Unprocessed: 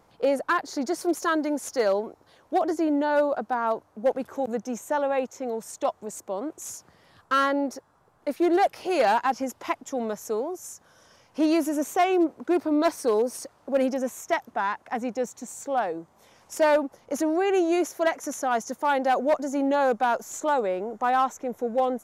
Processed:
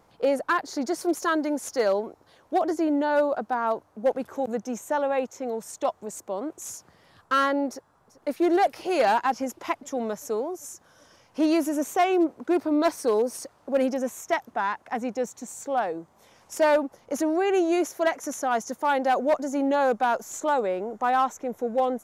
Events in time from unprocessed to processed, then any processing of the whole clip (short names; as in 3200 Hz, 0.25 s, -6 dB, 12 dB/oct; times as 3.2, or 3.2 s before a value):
7.69–8.41 echo throw 0.39 s, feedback 70%, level -17 dB